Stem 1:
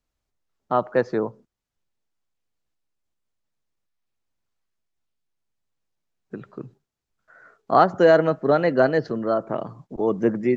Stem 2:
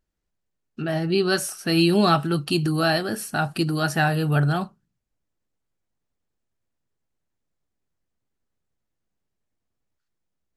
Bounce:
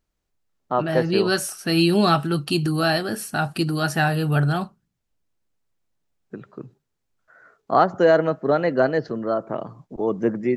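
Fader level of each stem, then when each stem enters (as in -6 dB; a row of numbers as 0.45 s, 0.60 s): -1.0 dB, +0.5 dB; 0.00 s, 0.00 s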